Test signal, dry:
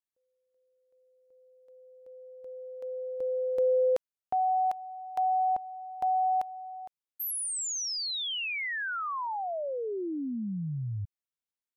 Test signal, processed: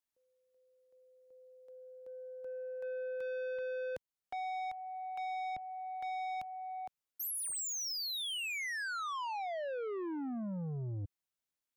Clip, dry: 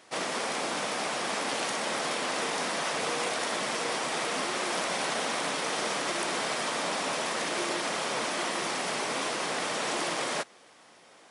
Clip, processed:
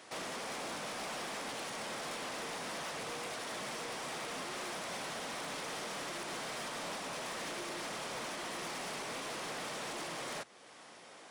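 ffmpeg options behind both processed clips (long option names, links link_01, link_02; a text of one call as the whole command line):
ffmpeg -i in.wav -filter_complex "[0:a]acrossover=split=140[link_01][link_02];[link_02]alimiter=level_in=5dB:limit=-24dB:level=0:latency=1:release=368,volume=-5dB[link_03];[link_01][link_03]amix=inputs=2:normalize=0,asoftclip=type=tanh:threshold=-38.5dB,volume=1.5dB" out.wav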